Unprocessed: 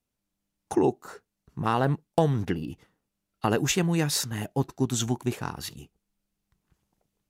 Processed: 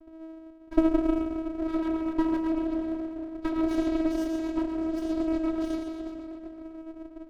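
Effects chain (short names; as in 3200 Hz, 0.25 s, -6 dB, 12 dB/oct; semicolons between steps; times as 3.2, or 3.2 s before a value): bell 140 Hz +10 dB 0.98 oct; in parallel at -1 dB: limiter -16.5 dBFS, peak gain reduction 9.5 dB; on the sum: compressor 10:1, threshold -18 dBFS, peak gain reduction 8.5 dB; whine 400 Hz -37 dBFS; level quantiser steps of 10 dB; shoebox room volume 130 m³, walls hard, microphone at 0.75 m; rotary speaker horn 8 Hz; vocoder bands 8, saw 322 Hz; running maximum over 33 samples; gain -3.5 dB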